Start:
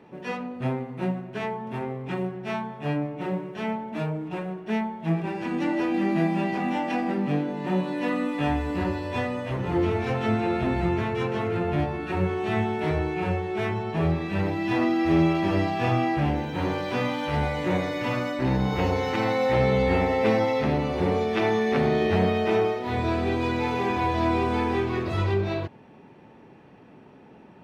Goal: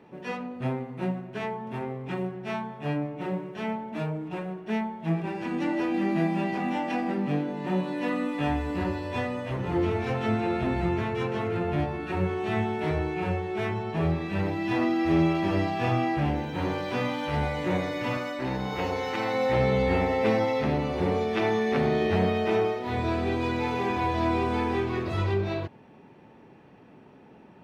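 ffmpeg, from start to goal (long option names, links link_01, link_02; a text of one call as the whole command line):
ffmpeg -i in.wav -filter_complex "[0:a]asettb=1/sr,asplit=3[link_01][link_02][link_03];[link_01]atrim=end=18.174[link_04];[link_02]atrim=start=18.17:end=19.34,asetpts=PTS-STARTPTS,afade=type=in:duration=0.004:curve=qsin,afade=type=out:start_time=1.166:duration=0.004:curve=qsin,lowshelf=frequency=240:gain=-9.5[link_05];[link_03]atrim=start=19.336[link_06];[link_04][link_05]acrossfade=duration=0.004:curve1=hsin:curve2=qsin[link_07];[link_07][link_06]acrossfade=duration=0.004:curve1=qsin:curve2=hsin,volume=-2dB" out.wav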